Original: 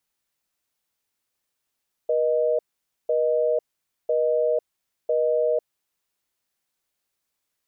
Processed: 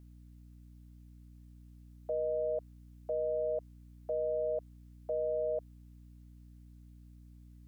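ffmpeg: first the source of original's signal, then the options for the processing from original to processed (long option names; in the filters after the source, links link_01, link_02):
-f lavfi -i "aevalsrc='0.0841*(sin(2*PI*480*t)+sin(2*PI*620*t))*clip(min(mod(t,1),0.5-mod(t,1))/0.005,0,1)':duration=3.68:sample_rate=44100"
-af "highpass=610,alimiter=level_in=3dB:limit=-24dB:level=0:latency=1:release=35,volume=-3dB,aeval=exprs='val(0)+0.00224*(sin(2*PI*60*n/s)+sin(2*PI*2*60*n/s)/2+sin(2*PI*3*60*n/s)/3+sin(2*PI*4*60*n/s)/4+sin(2*PI*5*60*n/s)/5)':channel_layout=same"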